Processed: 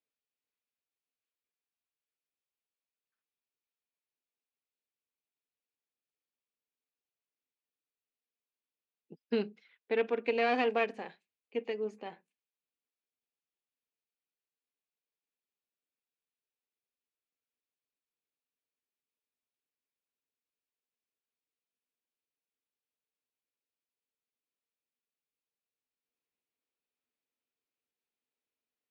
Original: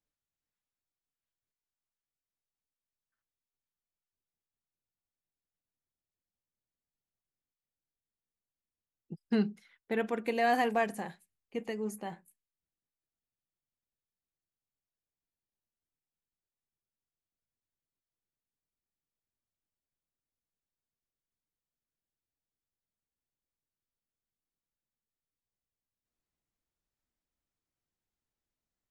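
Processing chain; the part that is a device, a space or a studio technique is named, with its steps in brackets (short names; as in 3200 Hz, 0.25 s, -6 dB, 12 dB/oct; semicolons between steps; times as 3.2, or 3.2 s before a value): guitar amplifier (tube stage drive 22 dB, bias 0.75; tone controls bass -12 dB, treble +10 dB; speaker cabinet 86–3900 Hz, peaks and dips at 250 Hz +9 dB, 450 Hz +9 dB, 2500 Hz +7 dB)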